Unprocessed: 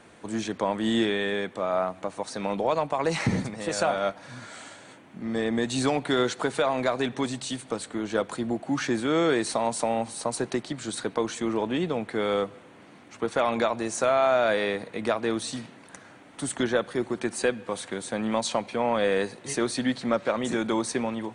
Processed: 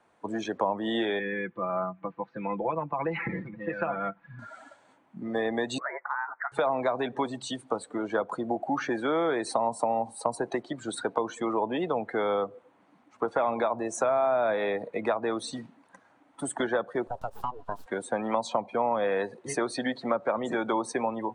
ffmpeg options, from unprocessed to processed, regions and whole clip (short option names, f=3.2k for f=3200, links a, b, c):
-filter_complex "[0:a]asettb=1/sr,asplit=3[a][b][c];[a]atrim=end=1.194[d];[b]atrim=start=1.19:end=4.39,asetpts=PTS-STARTPTS,afade=t=in:d=0.004:c=qsin,afade=t=out:st=3.196:d=0.004:c=qsin,lowpass=f=2.7k:w=0.5412,lowpass=f=2.7k:w=1.3066,equalizer=f=680:w=0.95:g=-13.5,aecho=1:1:5.9:0.61,atrim=end_sample=141120[e];[c]atrim=start=4.386[f];[d][e]acrossfade=d=0.004:c1=hsin:c2=qsin[g];[g][f]acrossfade=d=0.004:c1=qsin:c2=hsin,asettb=1/sr,asplit=3[h][i][j];[h]atrim=end=5.784[k];[i]atrim=start=5.78:end=6.52,asetpts=PTS-STARTPTS,afade=t=in:d=0.004:c=qsin,afade=t=out:st=0.736:d=0.004:c=qsin,highpass=f=1.1k:w=0.5412,highpass=f=1.1k:w=1.3066,lowpass=f=2.5k:t=q:w=0.5098,lowpass=f=2.5k:t=q:w=0.6013,lowpass=f=2.5k:t=q:w=0.9,lowpass=f=2.5k:t=q:w=2.563,afreqshift=-2900[l];[j]atrim=start=6.516[m];[k][l]acrossfade=d=0.004:c1=hsin:c2=qsin[n];[n][m]acrossfade=d=0.004:c1=qsin:c2=hsin,asettb=1/sr,asplit=3[o][p][q];[o]atrim=end=17.074[r];[p]atrim=start=17.07:end=17.86,asetpts=PTS-STARTPTS,afade=t=in:d=0.004:c=qsin,afade=t=out:st=0.786:d=0.004:c=qsin,aeval=exprs='abs(val(0))':c=same,equalizer=f=2.1k:w=3.7:g=-11.5,acompressor=threshold=-29dB:ratio=3:attack=3.2:release=140:knee=1:detection=peak[s];[q]atrim=start=17.856[t];[r][s]acrossfade=d=0.004:c1=hsin:c2=qsin[u];[u][t]acrossfade=d=0.004:c1=qsin:c2=hsin,afftdn=nr=19:nf=-35,equalizer=f=900:w=0.91:g=11,acrossover=split=310|710[v][w][x];[v]acompressor=threshold=-39dB:ratio=4[y];[w]acompressor=threshold=-29dB:ratio=4[z];[x]acompressor=threshold=-32dB:ratio=4[aa];[y][z][aa]amix=inputs=3:normalize=0"